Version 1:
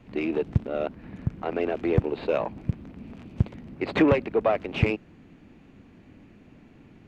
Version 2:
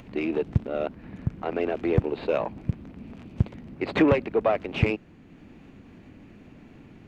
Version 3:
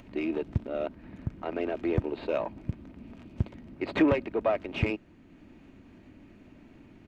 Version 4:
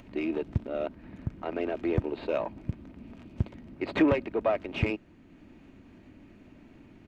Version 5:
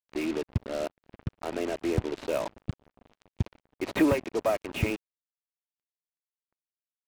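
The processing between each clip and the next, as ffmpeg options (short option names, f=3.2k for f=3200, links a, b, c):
-af "acompressor=mode=upward:threshold=-42dB:ratio=2.5"
-af "aecho=1:1:3.2:0.3,volume=-4.5dB"
-af anull
-af "acrusher=bits=5:mix=0:aa=0.5"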